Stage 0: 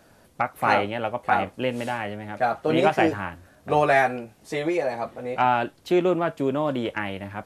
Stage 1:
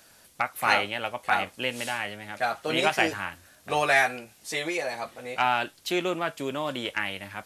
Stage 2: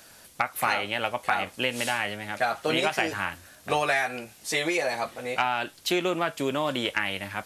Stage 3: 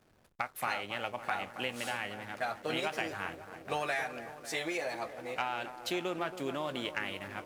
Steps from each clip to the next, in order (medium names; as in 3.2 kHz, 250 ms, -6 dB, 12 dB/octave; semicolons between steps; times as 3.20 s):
tilt shelf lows -9 dB, about 1.5 kHz
compression 12:1, threshold -25 dBFS, peak gain reduction 10 dB; trim +4.5 dB
feedback echo behind a low-pass 274 ms, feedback 67%, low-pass 1.7 kHz, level -11 dB; hysteresis with a dead band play -40 dBFS; trim -9 dB